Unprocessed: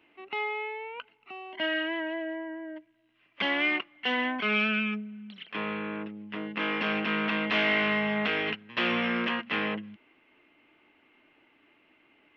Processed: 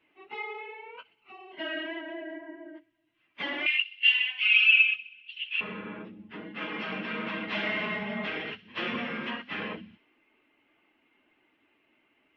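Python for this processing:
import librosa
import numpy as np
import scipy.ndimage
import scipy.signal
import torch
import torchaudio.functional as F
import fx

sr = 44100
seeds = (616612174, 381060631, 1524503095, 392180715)

y = fx.phase_scramble(x, sr, seeds[0], window_ms=50)
y = fx.highpass_res(y, sr, hz=2700.0, q=11.0, at=(3.66, 5.61))
y = fx.echo_wet_highpass(y, sr, ms=64, feedback_pct=60, hz=3900.0, wet_db=-11.5)
y = y * librosa.db_to_amplitude(-5.5)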